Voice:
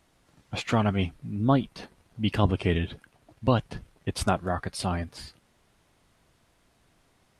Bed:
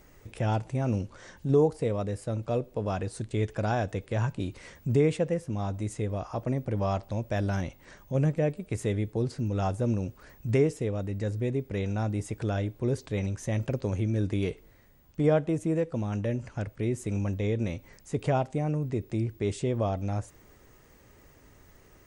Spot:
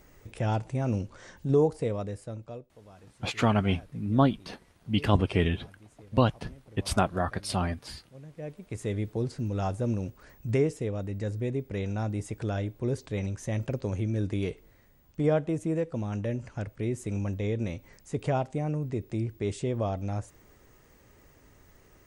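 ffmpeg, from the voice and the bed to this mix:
ffmpeg -i stem1.wav -i stem2.wav -filter_complex "[0:a]adelay=2700,volume=0dB[link_01];[1:a]volume=20dB,afade=type=out:start_time=1.79:duration=0.91:silence=0.0841395,afade=type=in:start_time=8.29:duration=0.71:silence=0.0944061[link_02];[link_01][link_02]amix=inputs=2:normalize=0" out.wav

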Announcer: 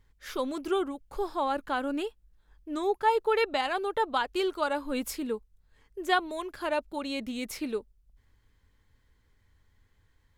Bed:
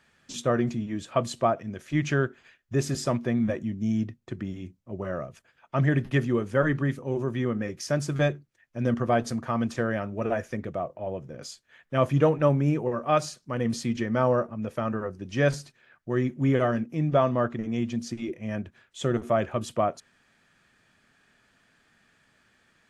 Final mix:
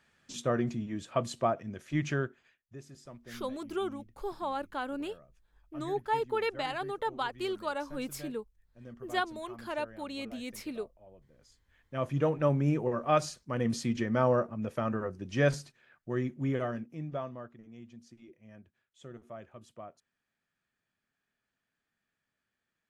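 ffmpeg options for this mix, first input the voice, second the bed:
ffmpeg -i stem1.wav -i stem2.wav -filter_complex "[0:a]adelay=3050,volume=-5.5dB[link_01];[1:a]volume=15dB,afade=type=out:start_time=2.01:duration=0.78:silence=0.125893,afade=type=in:start_time=11.5:duration=1.3:silence=0.1,afade=type=out:start_time=15.45:duration=2.04:silence=0.11885[link_02];[link_01][link_02]amix=inputs=2:normalize=0" out.wav

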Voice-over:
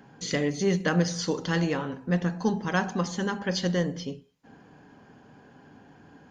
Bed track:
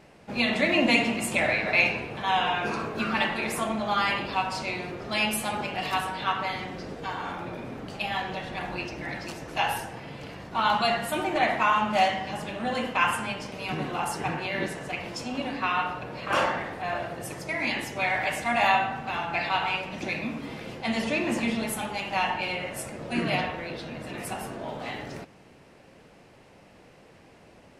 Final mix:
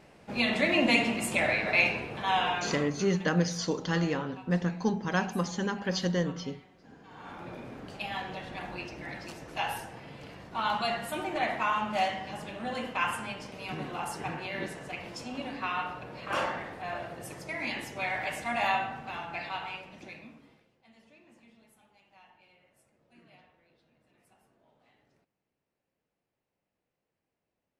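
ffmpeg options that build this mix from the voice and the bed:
ffmpeg -i stem1.wav -i stem2.wav -filter_complex "[0:a]adelay=2400,volume=-2.5dB[link_01];[1:a]volume=14.5dB,afade=type=out:start_time=2.45:duration=0.69:silence=0.0944061,afade=type=in:start_time=7.08:duration=0.43:silence=0.141254,afade=type=out:start_time=18.8:duration=1.89:silence=0.0473151[link_02];[link_01][link_02]amix=inputs=2:normalize=0" out.wav

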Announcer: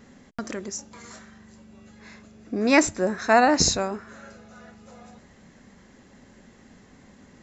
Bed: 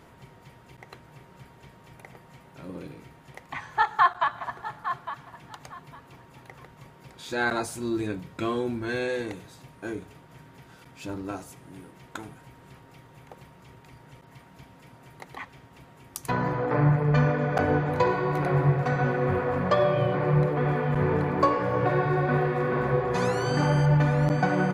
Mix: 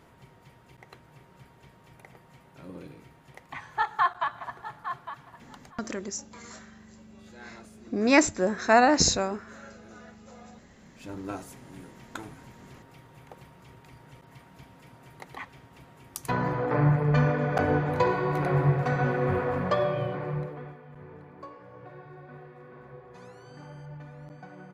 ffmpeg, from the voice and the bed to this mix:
ffmpeg -i stem1.wav -i stem2.wav -filter_complex "[0:a]adelay=5400,volume=-1.5dB[link_01];[1:a]volume=17dB,afade=type=out:start_time=5.39:duration=0.65:silence=0.125893,afade=type=in:start_time=10.8:duration=0.52:silence=0.0891251,afade=type=out:start_time=19.42:duration=1.35:silence=0.0841395[link_02];[link_01][link_02]amix=inputs=2:normalize=0" out.wav

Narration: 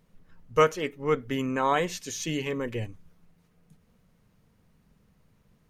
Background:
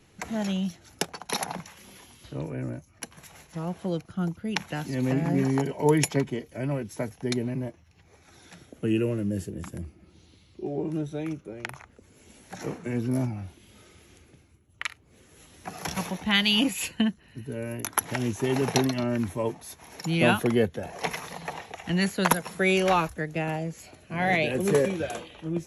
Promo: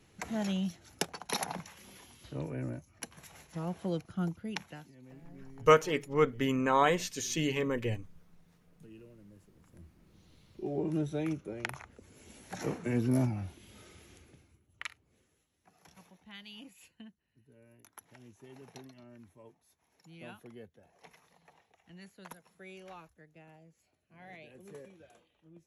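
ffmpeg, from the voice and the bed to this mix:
ffmpeg -i stem1.wav -i stem2.wav -filter_complex "[0:a]adelay=5100,volume=-1dB[link_01];[1:a]volume=22dB,afade=type=out:start_time=4.23:duration=0.7:silence=0.0668344,afade=type=in:start_time=9.64:duration=1.42:silence=0.0473151,afade=type=out:start_time=13.94:duration=1.51:silence=0.0530884[link_02];[link_01][link_02]amix=inputs=2:normalize=0" out.wav

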